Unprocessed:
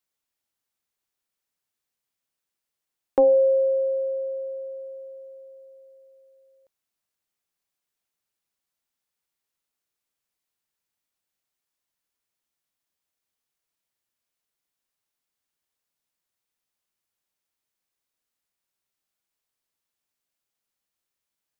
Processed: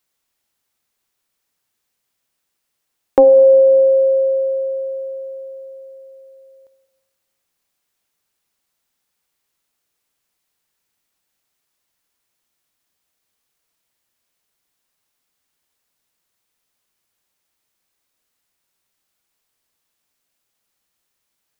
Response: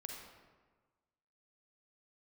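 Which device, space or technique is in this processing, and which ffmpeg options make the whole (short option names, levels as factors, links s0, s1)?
ducked reverb: -filter_complex "[0:a]asplit=3[s0][s1][s2];[1:a]atrim=start_sample=2205[s3];[s1][s3]afir=irnorm=-1:irlink=0[s4];[s2]apad=whole_len=952473[s5];[s4][s5]sidechaincompress=threshold=0.0708:ratio=8:attack=16:release=309,volume=1[s6];[s0][s6]amix=inputs=2:normalize=0,volume=2.11"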